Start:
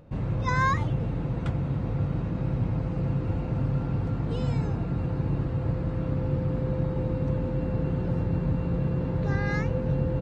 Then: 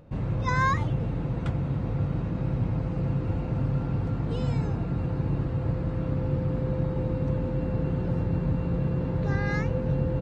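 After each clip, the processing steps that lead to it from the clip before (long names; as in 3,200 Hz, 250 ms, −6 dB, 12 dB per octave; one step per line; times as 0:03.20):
no processing that can be heard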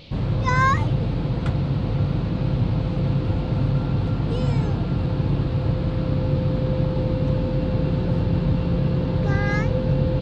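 noise in a band 2,200–4,500 Hz −55 dBFS
level +5.5 dB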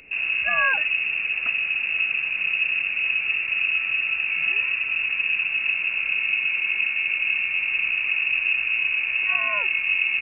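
voice inversion scrambler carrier 2,700 Hz
level −3 dB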